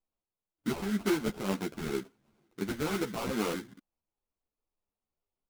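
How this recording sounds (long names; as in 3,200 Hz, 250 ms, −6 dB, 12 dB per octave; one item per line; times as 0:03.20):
phaser sweep stages 6, 2.1 Hz, lowest notch 580–3,200 Hz
aliases and images of a low sample rate 1,800 Hz, jitter 20%
a shimmering, thickened sound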